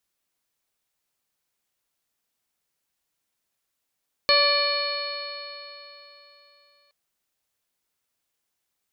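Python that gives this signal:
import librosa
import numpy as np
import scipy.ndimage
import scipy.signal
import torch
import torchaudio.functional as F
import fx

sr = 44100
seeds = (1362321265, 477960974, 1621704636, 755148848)

y = fx.additive_stiff(sr, length_s=2.62, hz=572.0, level_db=-21.5, upper_db=(-2, -5.5, -1.5, -9.0, -10.0, 4, -15.5), decay_s=3.38, stiffness=0.0036)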